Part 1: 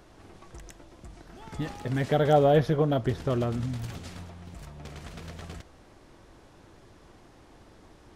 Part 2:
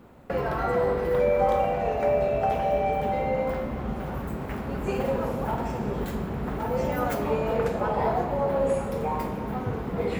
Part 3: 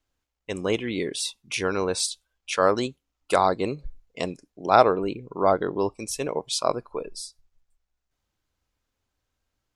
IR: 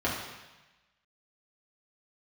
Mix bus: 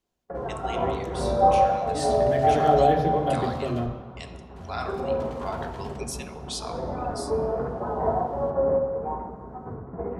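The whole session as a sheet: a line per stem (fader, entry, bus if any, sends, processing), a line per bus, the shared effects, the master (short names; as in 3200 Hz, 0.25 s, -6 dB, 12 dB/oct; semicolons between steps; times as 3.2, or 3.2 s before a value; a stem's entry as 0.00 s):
-7.0 dB, 0.35 s, muted 3.86–4.56, no bus, send -8 dB, dry
+0.5 dB, 0.00 s, bus A, send -7 dB, LPF 1300 Hz 24 dB/oct; de-hum 50.5 Hz, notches 11; upward expander 2.5:1, over -46 dBFS
-7.0 dB, 0.00 s, bus A, send -11 dB, passive tone stack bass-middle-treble 10-0-10
bus A: 0.0 dB, vocal rider within 5 dB 0.5 s; limiter -24 dBFS, peak gain reduction 8.5 dB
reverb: on, RT60 1.1 s, pre-delay 3 ms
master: dry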